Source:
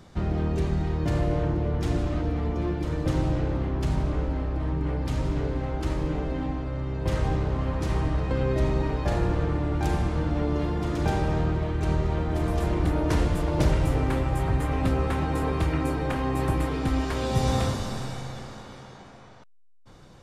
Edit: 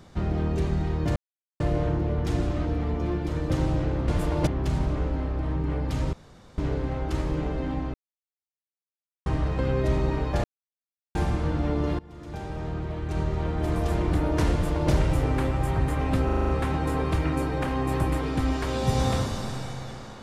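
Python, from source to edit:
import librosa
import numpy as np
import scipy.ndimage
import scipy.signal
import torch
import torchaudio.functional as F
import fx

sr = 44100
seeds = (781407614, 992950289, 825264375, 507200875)

y = fx.edit(x, sr, fx.insert_silence(at_s=1.16, length_s=0.44),
    fx.insert_room_tone(at_s=5.3, length_s=0.45),
    fx.silence(start_s=6.66, length_s=1.32),
    fx.silence(start_s=9.16, length_s=0.71),
    fx.fade_in_from(start_s=10.71, length_s=1.71, floor_db=-23.0),
    fx.duplicate(start_s=13.24, length_s=0.39, to_s=3.64),
    fx.stutter(start_s=14.97, slice_s=0.04, count=7), tone=tone)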